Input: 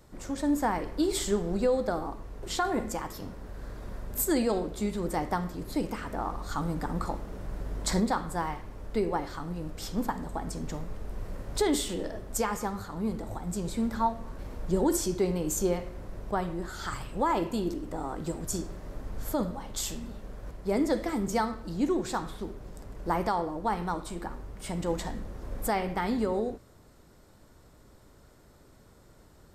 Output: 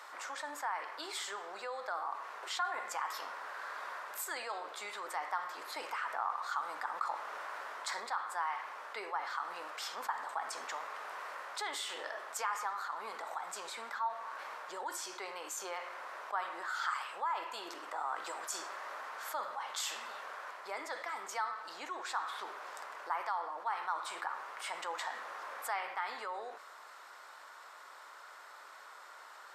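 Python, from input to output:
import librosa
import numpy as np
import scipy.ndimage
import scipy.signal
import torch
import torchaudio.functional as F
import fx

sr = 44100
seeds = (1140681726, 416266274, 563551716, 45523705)

y = fx.lowpass(x, sr, hz=2000.0, slope=6)
y = fx.rider(y, sr, range_db=5, speed_s=0.5)
y = fx.ladder_highpass(y, sr, hz=890.0, resonance_pct=30)
y = fx.env_flatten(y, sr, amount_pct=50)
y = y * 10.0 ** (1.5 / 20.0)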